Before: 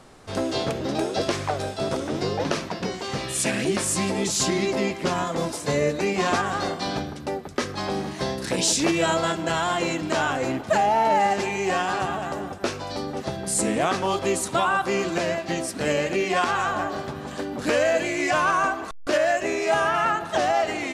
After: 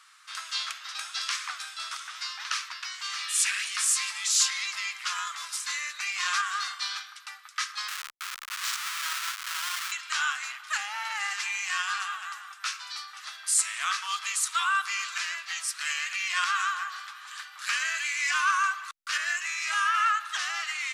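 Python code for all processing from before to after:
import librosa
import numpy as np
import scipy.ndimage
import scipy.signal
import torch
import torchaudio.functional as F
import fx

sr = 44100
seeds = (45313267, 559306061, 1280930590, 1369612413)

y = fx.chain(x, sr, fx.high_shelf(hz=3100.0, db=-9.5),
    fx.schmitt(flips_db=-25.5), at=(7.88, 9.92))
y = scipy.signal.sosfilt(scipy.signal.ellip(4, 1.0, 60, 1200.0, 'highpass', fs=sr, output='sos'), y)
y = fx.dynamic_eq(y, sr, hz=6300.0, q=0.83, threshold_db=-40.0, ratio=4.0, max_db=3)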